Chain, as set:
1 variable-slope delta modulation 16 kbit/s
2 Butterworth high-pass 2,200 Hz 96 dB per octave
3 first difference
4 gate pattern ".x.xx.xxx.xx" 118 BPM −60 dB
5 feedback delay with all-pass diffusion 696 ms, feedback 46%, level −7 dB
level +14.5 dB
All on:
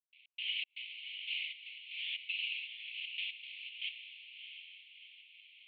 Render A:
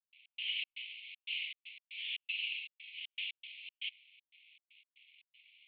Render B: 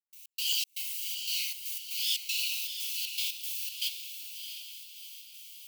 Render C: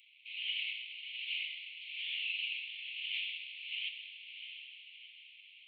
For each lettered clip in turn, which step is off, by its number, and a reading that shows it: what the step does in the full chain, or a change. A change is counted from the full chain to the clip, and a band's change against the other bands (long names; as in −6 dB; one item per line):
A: 5, echo-to-direct ratio −6.0 dB to none audible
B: 1, change in crest factor +5.5 dB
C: 4, change in momentary loudness spread −1 LU